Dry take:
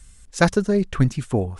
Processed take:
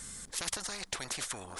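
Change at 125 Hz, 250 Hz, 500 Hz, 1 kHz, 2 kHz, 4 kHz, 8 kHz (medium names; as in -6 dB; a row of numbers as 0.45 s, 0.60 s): -30.0 dB, -28.5 dB, -25.5 dB, -15.5 dB, -14.0 dB, -2.0 dB, +1.5 dB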